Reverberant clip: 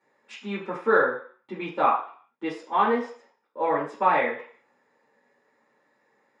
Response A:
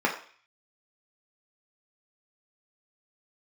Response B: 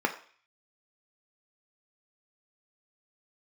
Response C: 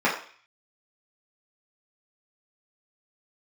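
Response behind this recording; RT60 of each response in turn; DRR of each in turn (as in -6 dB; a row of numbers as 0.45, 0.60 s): C; 0.45, 0.45, 0.45 s; -1.5, 4.0, -7.5 dB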